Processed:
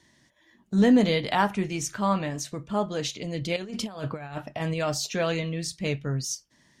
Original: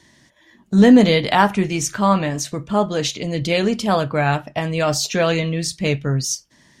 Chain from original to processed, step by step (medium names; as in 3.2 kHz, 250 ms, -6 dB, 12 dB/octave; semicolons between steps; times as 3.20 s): 3.56–4.74 s: compressor with a negative ratio -23 dBFS, ratio -0.5; trim -8.5 dB